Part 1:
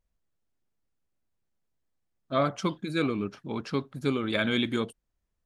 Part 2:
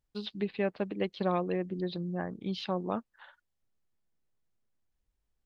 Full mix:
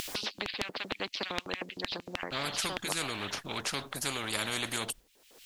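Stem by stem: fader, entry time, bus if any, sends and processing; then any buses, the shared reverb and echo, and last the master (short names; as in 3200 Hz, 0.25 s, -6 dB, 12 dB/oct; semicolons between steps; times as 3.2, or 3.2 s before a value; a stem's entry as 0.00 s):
-0.5 dB, 0.00 s, no send, expander -45 dBFS
-4.0 dB, 0.00 s, no send, LFO high-pass square 6.5 Hz 480–2600 Hz; graphic EQ 125/250/4000 Hz +4/+12/+3 dB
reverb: off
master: high shelf 4800 Hz +5.5 dB; upward compressor, threshold -35 dBFS; spectral compressor 4:1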